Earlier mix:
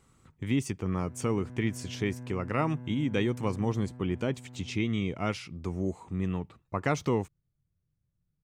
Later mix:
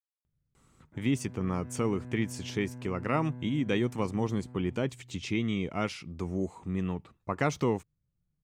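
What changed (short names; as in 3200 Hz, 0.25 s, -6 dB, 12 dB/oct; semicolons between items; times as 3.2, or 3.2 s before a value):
speech: entry +0.55 s; master: add bell 100 Hz -5 dB 0.3 oct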